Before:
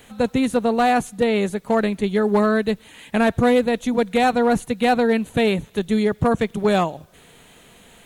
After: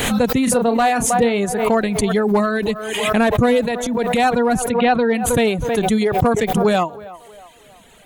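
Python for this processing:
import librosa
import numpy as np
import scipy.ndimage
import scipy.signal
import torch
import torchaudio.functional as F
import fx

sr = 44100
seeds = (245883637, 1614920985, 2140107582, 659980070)

p1 = fx.dereverb_blind(x, sr, rt60_s=1.2)
p2 = fx.doubler(p1, sr, ms=30.0, db=-11.0, at=(0.44, 1.45))
p3 = fx.lowpass(p2, sr, hz=fx.line((4.71, 3100.0), (5.13, 5500.0)), slope=24, at=(4.71, 5.13), fade=0.02)
p4 = p3 + fx.echo_banded(p3, sr, ms=318, feedback_pct=49, hz=790.0, wet_db=-17.0, dry=0)
p5 = fx.transient(p4, sr, attack_db=-9, sustain_db=6, at=(3.45, 4.21), fade=0.02)
p6 = fx.pre_swell(p5, sr, db_per_s=37.0)
y = p6 * 10.0 ** (2.5 / 20.0)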